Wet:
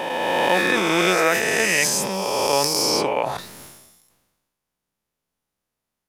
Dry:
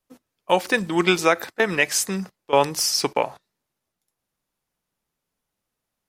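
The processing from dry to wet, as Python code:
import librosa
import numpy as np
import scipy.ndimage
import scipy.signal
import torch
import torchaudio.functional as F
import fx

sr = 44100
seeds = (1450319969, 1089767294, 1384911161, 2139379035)

y = fx.spec_swells(x, sr, rise_s=2.9)
y = fx.sustainer(y, sr, db_per_s=45.0)
y = F.gain(torch.from_numpy(y), -5.0).numpy()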